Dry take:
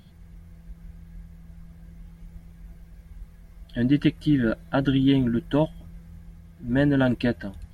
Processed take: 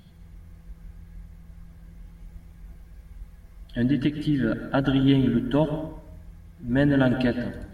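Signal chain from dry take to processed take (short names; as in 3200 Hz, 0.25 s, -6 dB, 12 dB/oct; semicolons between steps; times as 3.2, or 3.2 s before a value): 3.88–4.66 compressor, threshold -19 dBFS, peak gain reduction 5.5 dB; plate-style reverb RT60 0.8 s, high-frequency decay 0.6×, pre-delay 95 ms, DRR 8.5 dB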